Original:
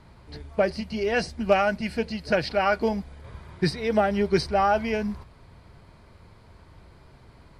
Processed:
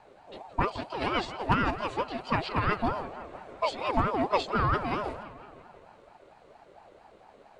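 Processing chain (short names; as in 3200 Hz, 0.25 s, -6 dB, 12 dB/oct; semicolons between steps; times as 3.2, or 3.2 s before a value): formant shift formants -4 st; analogue delay 0.169 s, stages 4096, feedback 60%, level -13.5 dB; ring modulator with a swept carrier 650 Hz, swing 30%, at 4.4 Hz; gain -1.5 dB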